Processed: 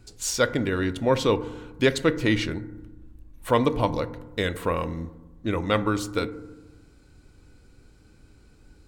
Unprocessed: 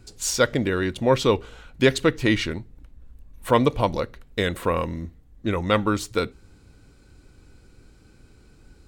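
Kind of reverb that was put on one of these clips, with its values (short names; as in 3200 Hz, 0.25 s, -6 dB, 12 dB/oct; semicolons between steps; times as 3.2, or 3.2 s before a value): FDN reverb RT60 1.1 s, low-frequency decay 1.45×, high-frequency decay 0.25×, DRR 12 dB; gain -2.5 dB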